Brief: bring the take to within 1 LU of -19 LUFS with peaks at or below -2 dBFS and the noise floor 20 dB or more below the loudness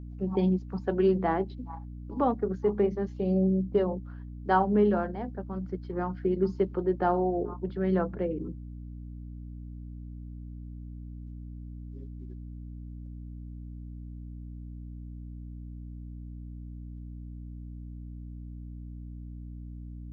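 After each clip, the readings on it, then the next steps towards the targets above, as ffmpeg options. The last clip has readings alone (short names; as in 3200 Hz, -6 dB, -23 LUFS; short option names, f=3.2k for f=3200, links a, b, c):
hum 60 Hz; harmonics up to 300 Hz; hum level -38 dBFS; loudness -29.0 LUFS; peak -12.5 dBFS; loudness target -19.0 LUFS
-> -af "bandreject=f=60:t=h:w=6,bandreject=f=120:t=h:w=6,bandreject=f=180:t=h:w=6,bandreject=f=240:t=h:w=6,bandreject=f=300:t=h:w=6"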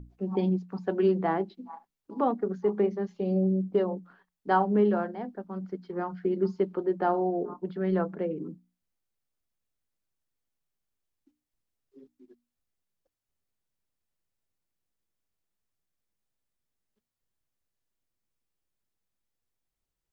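hum none; loudness -29.0 LUFS; peak -12.5 dBFS; loudness target -19.0 LUFS
-> -af "volume=10dB"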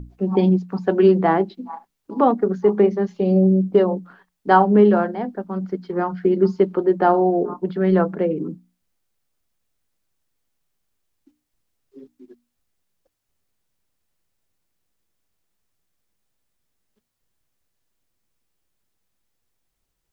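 loudness -19.0 LUFS; peak -2.5 dBFS; noise floor -77 dBFS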